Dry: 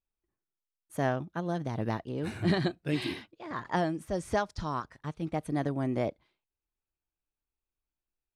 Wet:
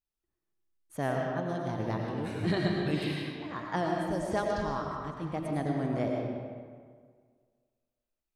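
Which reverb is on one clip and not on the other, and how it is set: digital reverb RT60 1.8 s, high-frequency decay 0.65×, pre-delay 65 ms, DRR -0.5 dB; gain -3 dB

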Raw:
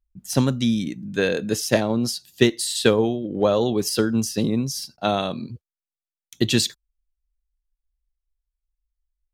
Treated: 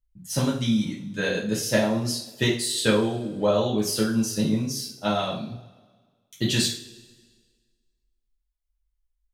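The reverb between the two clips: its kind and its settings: two-slope reverb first 0.39 s, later 1.6 s, from -20 dB, DRR -6 dB; gain -8.5 dB

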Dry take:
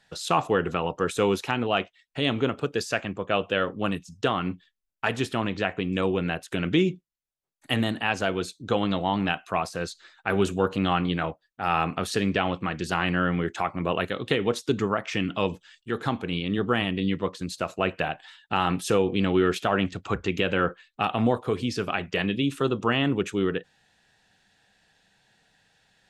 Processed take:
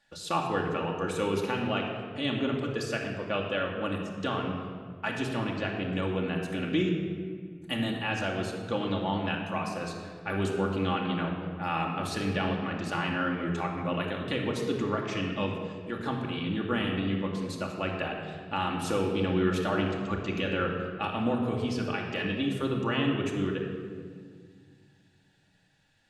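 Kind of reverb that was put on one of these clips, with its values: shoebox room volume 3200 m³, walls mixed, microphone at 2.4 m; gain -8 dB

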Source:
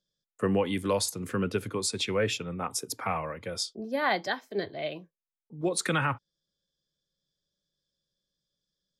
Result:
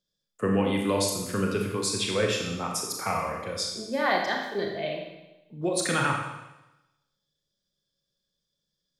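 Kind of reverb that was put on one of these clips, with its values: Schroeder reverb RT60 0.99 s, combs from 27 ms, DRR 0.5 dB

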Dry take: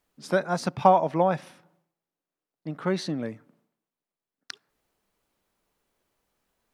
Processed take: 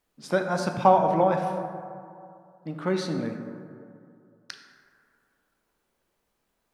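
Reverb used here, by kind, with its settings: plate-style reverb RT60 2.4 s, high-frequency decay 0.35×, DRR 4 dB; gain -1 dB

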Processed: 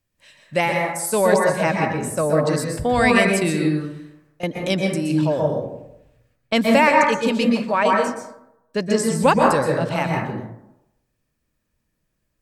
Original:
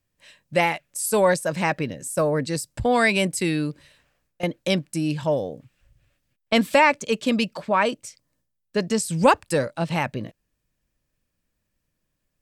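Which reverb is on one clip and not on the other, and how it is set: plate-style reverb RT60 0.84 s, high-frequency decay 0.35×, pre-delay 0.11 s, DRR -0.5 dB

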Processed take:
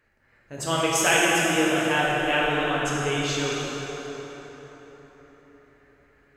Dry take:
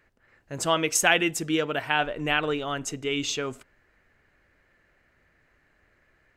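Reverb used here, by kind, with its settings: plate-style reverb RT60 4.6 s, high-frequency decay 0.6×, DRR -6.5 dB; gain -4 dB

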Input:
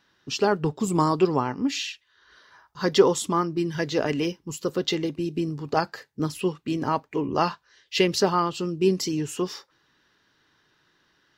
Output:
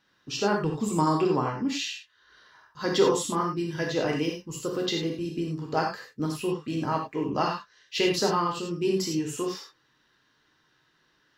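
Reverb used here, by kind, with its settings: non-linear reverb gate 0.12 s flat, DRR -0.5 dB; gain -5 dB

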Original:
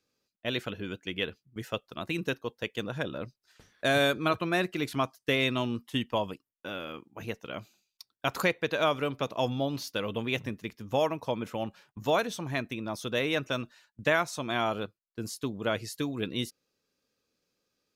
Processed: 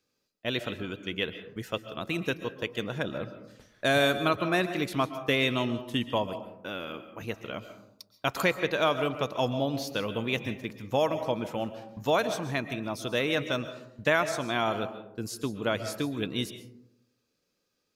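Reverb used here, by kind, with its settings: digital reverb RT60 0.82 s, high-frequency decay 0.35×, pre-delay 95 ms, DRR 10.5 dB; gain +1 dB

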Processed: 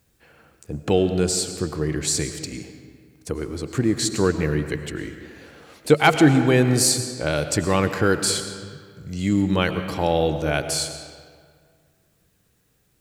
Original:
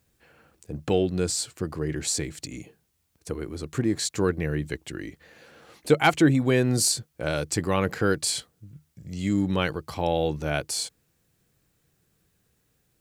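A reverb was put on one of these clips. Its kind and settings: digital reverb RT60 1.9 s, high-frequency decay 0.7×, pre-delay 65 ms, DRR 8.5 dB; gain +4 dB

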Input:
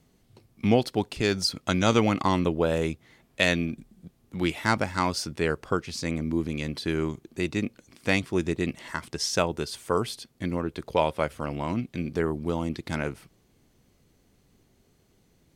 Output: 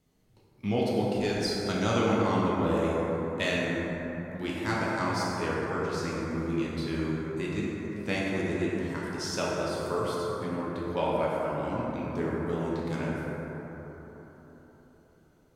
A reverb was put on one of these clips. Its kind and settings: plate-style reverb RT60 4.3 s, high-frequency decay 0.3×, DRR -6.5 dB; gain -10 dB

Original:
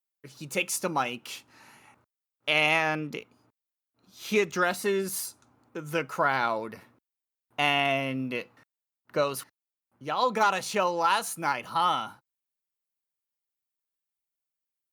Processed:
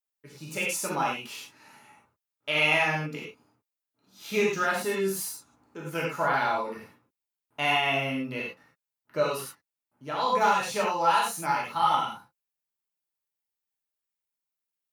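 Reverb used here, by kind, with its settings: non-linear reverb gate 0.13 s flat, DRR -4.5 dB; gain -5.5 dB

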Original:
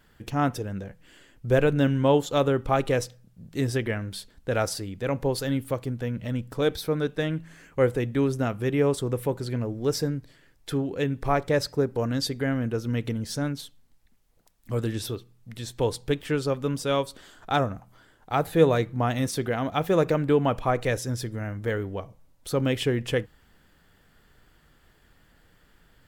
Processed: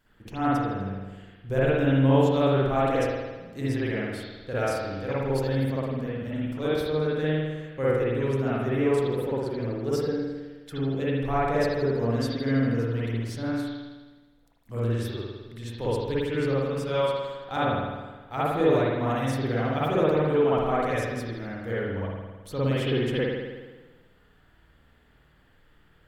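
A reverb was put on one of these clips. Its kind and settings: spring tank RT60 1.3 s, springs 52 ms, chirp 30 ms, DRR -9 dB; gain -9.5 dB

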